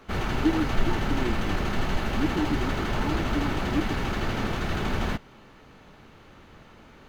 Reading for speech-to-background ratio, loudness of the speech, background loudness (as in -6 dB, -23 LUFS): -3.0 dB, -32.0 LUFS, -29.0 LUFS